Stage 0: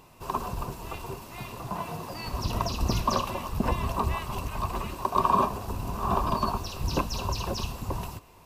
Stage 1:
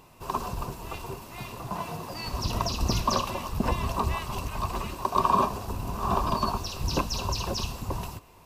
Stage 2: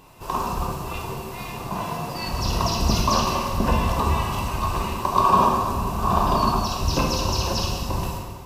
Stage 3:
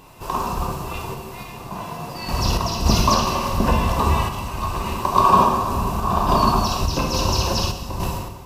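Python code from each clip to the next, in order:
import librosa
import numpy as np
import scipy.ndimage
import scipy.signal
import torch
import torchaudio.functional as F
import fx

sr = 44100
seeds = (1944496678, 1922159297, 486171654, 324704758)

y1 = fx.dynamic_eq(x, sr, hz=5300.0, q=0.9, threshold_db=-48.0, ratio=4.0, max_db=4)
y2 = fx.rev_plate(y1, sr, seeds[0], rt60_s=1.7, hf_ratio=0.8, predelay_ms=0, drr_db=-1.5)
y2 = y2 * 10.0 ** (2.5 / 20.0)
y3 = fx.tremolo_random(y2, sr, seeds[1], hz=3.5, depth_pct=55)
y3 = y3 * 10.0 ** (4.0 / 20.0)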